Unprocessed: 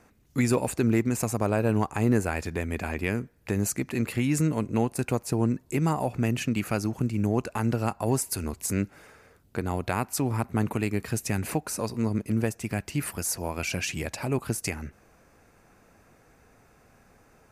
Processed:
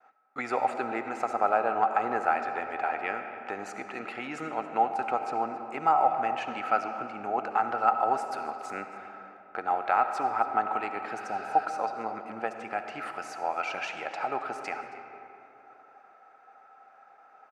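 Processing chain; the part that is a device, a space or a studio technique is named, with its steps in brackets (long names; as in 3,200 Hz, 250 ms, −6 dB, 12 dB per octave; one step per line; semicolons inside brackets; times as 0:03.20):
tin-can telephone (band-pass filter 570–2,800 Hz; hollow resonant body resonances 780/1,300 Hz, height 17 dB, ringing for 35 ms)
downward expander −52 dBFS
healed spectral selection 0:11.20–0:11.63, 1,000–5,300 Hz before
single-tap delay 273 ms −19 dB
comb and all-pass reverb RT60 3.1 s, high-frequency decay 0.5×, pre-delay 30 ms, DRR 7 dB
level −2 dB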